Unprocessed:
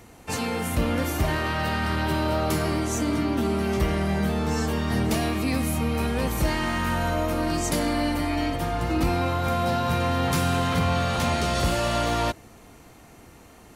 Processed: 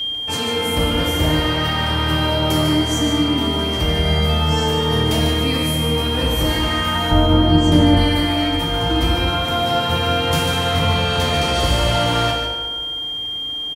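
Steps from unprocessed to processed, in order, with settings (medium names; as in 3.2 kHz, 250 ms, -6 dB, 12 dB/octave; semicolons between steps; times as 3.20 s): 4.04–4.52 s: comb 1.5 ms, depth 46%; 7.11–7.97 s: tilt EQ -3.5 dB/octave; whistle 3.2 kHz -26 dBFS; delay 147 ms -7 dB; FDN reverb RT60 1.6 s, low-frequency decay 0.9×, high-frequency decay 0.5×, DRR -1 dB; trim +1.5 dB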